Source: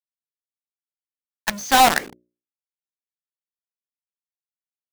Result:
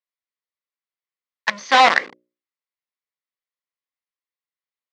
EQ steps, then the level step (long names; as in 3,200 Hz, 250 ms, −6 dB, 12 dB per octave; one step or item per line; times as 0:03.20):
loudspeaker in its box 180–4,900 Hz, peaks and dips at 520 Hz +7 dB, 1,100 Hz +9 dB, 2,000 Hz +9 dB
spectral tilt +1.5 dB per octave
−1.5 dB